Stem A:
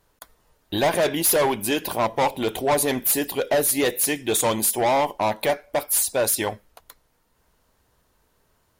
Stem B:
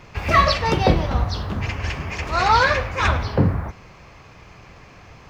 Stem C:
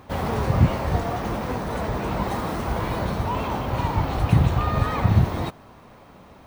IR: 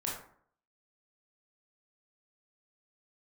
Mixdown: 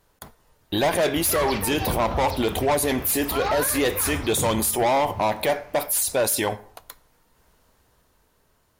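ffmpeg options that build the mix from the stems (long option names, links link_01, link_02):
-filter_complex "[0:a]dynaudnorm=framelen=260:gausssize=9:maxgain=3.5dB,volume=0.5dB,asplit=3[link_01][link_02][link_03];[link_02]volume=-19dB[link_04];[1:a]adelay=1000,volume=-7.5dB[link_05];[2:a]volume=-19.5dB[link_06];[link_03]apad=whole_len=289324[link_07];[link_06][link_07]sidechaingate=range=-33dB:threshold=-47dB:ratio=16:detection=peak[link_08];[3:a]atrim=start_sample=2205[link_09];[link_04][link_09]afir=irnorm=-1:irlink=0[link_10];[link_01][link_05][link_08][link_10]amix=inputs=4:normalize=0,alimiter=limit=-14.5dB:level=0:latency=1:release=22"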